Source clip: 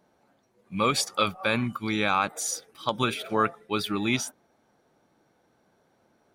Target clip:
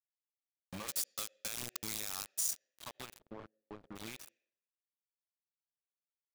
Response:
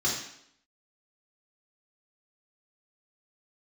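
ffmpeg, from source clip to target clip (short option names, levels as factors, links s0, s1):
-filter_complex "[0:a]highshelf=f=6400:g=7,acompressor=threshold=0.0158:ratio=12,aeval=exprs='val(0)+0.001*sin(2*PI*640*n/s)':c=same,acrusher=bits=5:mix=0:aa=0.000001,asplit=2[s0][s1];[s1]asplit=3[s2][s3][s4];[s2]bandpass=f=530:t=q:w=8,volume=1[s5];[s3]bandpass=f=1840:t=q:w=8,volume=0.501[s6];[s4]bandpass=f=2480:t=q:w=8,volume=0.355[s7];[s5][s6][s7]amix=inputs=3:normalize=0[s8];[1:a]atrim=start_sample=2205,adelay=78[s9];[s8][s9]afir=irnorm=-1:irlink=0,volume=0.0631[s10];[s0][s10]amix=inputs=2:normalize=0,aeval=exprs='(mod(31.6*val(0)+1,2)-1)/31.6':c=same,asettb=1/sr,asplit=3[s11][s12][s13];[s11]atrim=end=0.884[s14];[s12]atrim=start=0.88:end=2.53,asetpts=PTS-STARTPTS,afade=t=in:d=0.004:c=qsin,afade=t=out:st=1.646:d=0.004:c=qsin,bass=f=250:g=2,treble=f=4000:g=14[s15];[s13]atrim=start=2.526[s16];[s14][s15]acrossfade=d=0.004:c1=hsin:c2=qsin[s17];[s17][s16]acrossfade=d=0.004:c1=qsin:c2=hsin,asplit=3[s18][s19][s20];[s18]afade=t=out:st=3.18:d=0.02[s21];[s19]adynamicsmooth=sensitivity=2:basefreq=510,afade=t=in:st=3.18:d=0.02,afade=t=out:st=3.95:d=0.02[s22];[s20]afade=t=in:st=3.95:d=0.02[s23];[s21][s22][s23]amix=inputs=3:normalize=0,volume=0.398"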